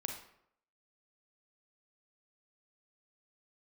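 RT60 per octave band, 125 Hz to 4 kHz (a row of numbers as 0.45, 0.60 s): 0.70, 0.70, 0.75, 0.70, 0.60, 0.45 s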